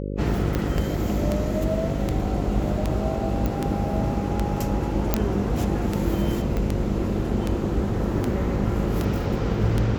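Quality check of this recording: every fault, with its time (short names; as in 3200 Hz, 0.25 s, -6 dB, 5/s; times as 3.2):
buzz 50 Hz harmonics 11 -29 dBFS
tick 78 rpm -11 dBFS
3.46 pop -13 dBFS
5.14 pop -5 dBFS
6.57 pop -15 dBFS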